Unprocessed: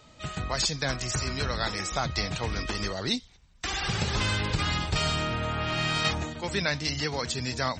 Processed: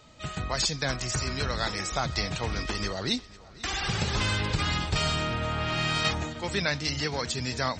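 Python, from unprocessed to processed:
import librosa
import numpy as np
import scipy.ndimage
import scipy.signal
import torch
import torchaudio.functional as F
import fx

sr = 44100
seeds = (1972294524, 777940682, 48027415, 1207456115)

y = x + fx.echo_feedback(x, sr, ms=492, feedback_pct=60, wet_db=-21, dry=0)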